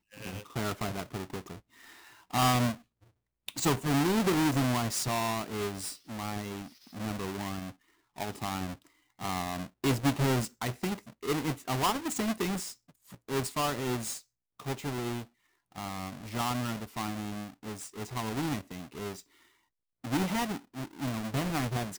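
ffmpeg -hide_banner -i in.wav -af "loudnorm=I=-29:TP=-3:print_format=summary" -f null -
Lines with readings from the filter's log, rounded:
Input Integrated:    -32.8 LUFS
Input True Peak:     -17.5 dBTP
Input LRA:             7.1 LU
Input Threshold:     -43.5 LUFS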